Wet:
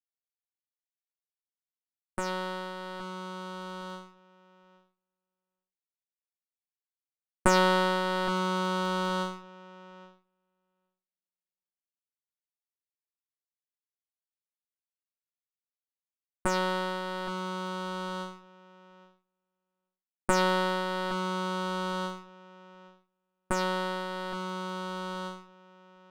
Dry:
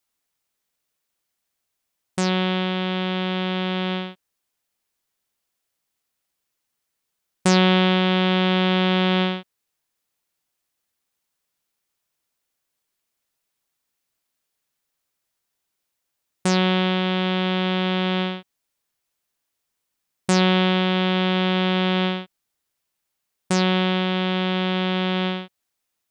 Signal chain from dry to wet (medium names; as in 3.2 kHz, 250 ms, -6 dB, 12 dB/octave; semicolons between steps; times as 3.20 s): comb filter that takes the minimum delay 8.7 ms; resonant high shelf 1.7 kHz -9 dB, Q 3; filtered feedback delay 817 ms, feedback 19%, low-pass 1.6 kHz, level -9 dB; power-law waveshaper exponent 2; trim +3.5 dB